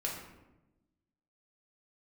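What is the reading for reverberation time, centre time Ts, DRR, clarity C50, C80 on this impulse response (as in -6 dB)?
1.0 s, 45 ms, -3.0 dB, 3.5 dB, 6.0 dB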